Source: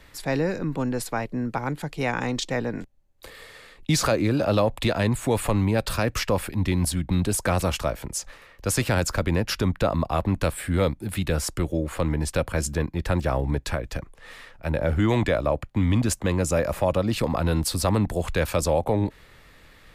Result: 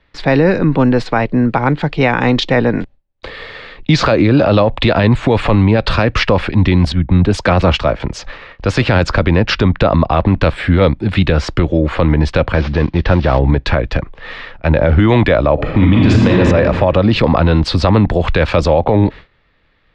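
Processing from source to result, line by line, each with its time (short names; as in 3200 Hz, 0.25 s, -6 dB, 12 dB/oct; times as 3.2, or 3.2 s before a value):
6.92–8 three-band expander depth 100%
12.54–13.39 CVSD 32 kbps
15.54–16.38 reverb throw, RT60 1.7 s, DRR -3 dB
whole clip: gate with hold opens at -38 dBFS; LPF 4100 Hz 24 dB/oct; maximiser +16 dB; gain -1 dB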